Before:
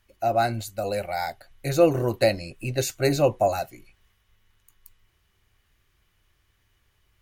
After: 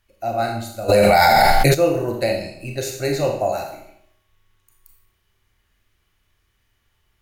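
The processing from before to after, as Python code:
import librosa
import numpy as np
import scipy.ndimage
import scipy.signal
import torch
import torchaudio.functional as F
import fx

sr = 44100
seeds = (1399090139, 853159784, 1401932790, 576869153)

y = fx.echo_filtered(x, sr, ms=73, feedback_pct=51, hz=3800.0, wet_db=-14.0)
y = fx.rev_schroeder(y, sr, rt60_s=0.62, comb_ms=27, drr_db=2.0)
y = fx.env_flatten(y, sr, amount_pct=100, at=(0.88, 1.73), fade=0.02)
y = y * librosa.db_to_amplitude(-1.5)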